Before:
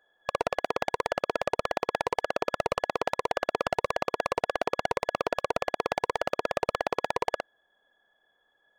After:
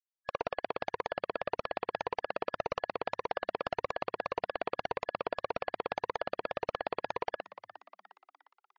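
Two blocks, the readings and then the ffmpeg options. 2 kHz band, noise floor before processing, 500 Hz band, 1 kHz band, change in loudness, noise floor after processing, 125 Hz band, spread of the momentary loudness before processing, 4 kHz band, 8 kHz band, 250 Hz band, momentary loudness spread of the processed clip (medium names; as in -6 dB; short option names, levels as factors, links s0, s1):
-6.5 dB, -72 dBFS, -6.5 dB, -6.0 dB, -6.5 dB, under -85 dBFS, -6.5 dB, 1 LU, -7.5 dB, under -15 dB, -6.5 dB, 2 LU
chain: -filter_complex "[0:a]afftfilt=real='re*gte(hypot(re,im),0.0112)':imag='im*gte(hypot(re,im),0.0112)':win_size=1024:overlap=0.75,asplit=5[s0][s1][s2][s3][s4];[s1]adelay=355,afreqshift=90,volume=0.158[s5];[s2]adelay=710,afreqshift=180,volume=0.0794[s6];[s3]adelay=1065,afreqshift=270,volume=0.0398[s7];[s4]adelay=1420,afreqshift=360,volume=0.0197[s8];[s0][s5][s6][s7][s8]amix=inputs=5:normalize=0,volume=0.473"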